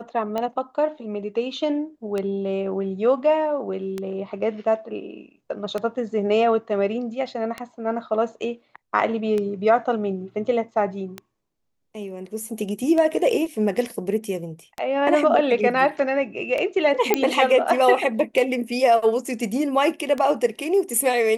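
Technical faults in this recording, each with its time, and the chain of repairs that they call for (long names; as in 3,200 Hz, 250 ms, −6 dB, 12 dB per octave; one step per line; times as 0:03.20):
scratch tick 33 1/3 rpm −14 dBFS
0:17.14: click −3 dBFS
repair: click removal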